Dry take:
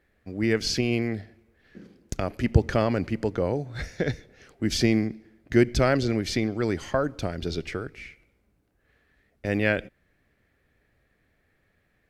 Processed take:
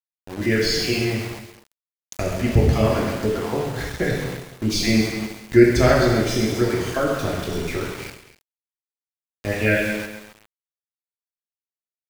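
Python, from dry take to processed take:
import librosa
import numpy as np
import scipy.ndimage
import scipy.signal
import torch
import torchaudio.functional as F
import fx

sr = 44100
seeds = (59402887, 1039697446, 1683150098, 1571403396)

y = fx.spec_dropout(x, sr, seeds[0], share_pct=25)
y = fx.rev_gated(y, sr, seeds[1], gate_ms=360, shape='falling', drr_db=-4.0)
y = np.where(np.abs(y) >= 10.0 ** (-31.5 / 20.0), y, 0.0)
y = y + 10.0 ** (-17.0 / 20.0) * np.pad(y, (int(249 * sr / 1000.0), 0))[:len(y)]
y = fx.echo_crushed(y, sr, ms=136, feedback_pct=55, bits=6, wet_db=-10.0)
y = F.gain(torch.from_numpy(y), 1.0).numpy()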